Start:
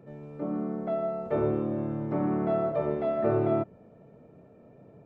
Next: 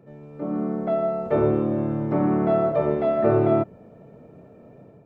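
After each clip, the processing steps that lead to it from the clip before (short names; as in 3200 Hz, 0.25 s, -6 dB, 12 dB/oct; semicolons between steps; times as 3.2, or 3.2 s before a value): AGC gain up to 6.5 dB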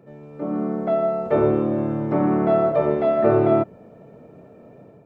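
low shelf 160 Hz -5.5 dB; gain +3 dB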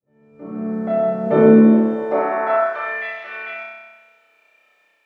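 opening faded in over 1.26 s; high-pass sweep 70 Hz -> 2500 Hz, 0.71–3.15; flutter echo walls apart 5.4 m, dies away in 1.3 s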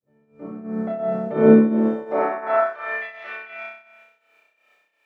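tremolo triangle 2.8 Hz, depth 80%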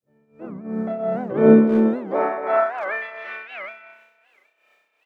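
speakerphone echo 0.25 s, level -9 dB; record warp 78 rpm, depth 250 cents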